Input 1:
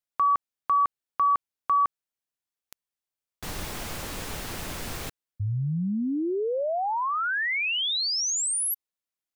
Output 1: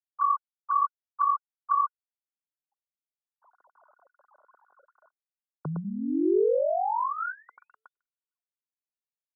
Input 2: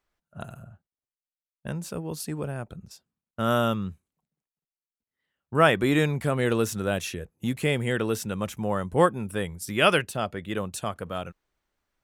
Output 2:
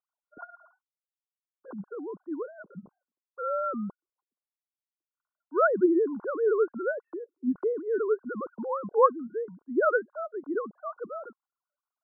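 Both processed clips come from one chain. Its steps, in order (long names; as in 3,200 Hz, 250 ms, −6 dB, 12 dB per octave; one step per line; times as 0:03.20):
three sine waves on the formant tracks
Chebyshev low-pass with heavy ripple 1,500 Hz, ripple 6 dB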